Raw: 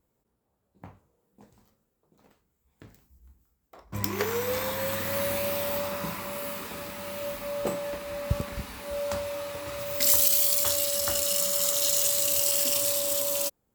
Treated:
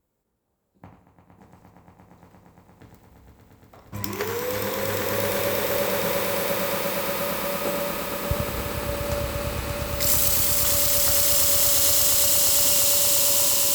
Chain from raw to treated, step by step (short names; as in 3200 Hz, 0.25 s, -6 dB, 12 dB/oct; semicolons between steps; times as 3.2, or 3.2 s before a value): swelling echo 0.116 s, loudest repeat 8, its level -6.5 dB; warbling echo 90 ms, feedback 33%, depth 86 cents, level -9 dB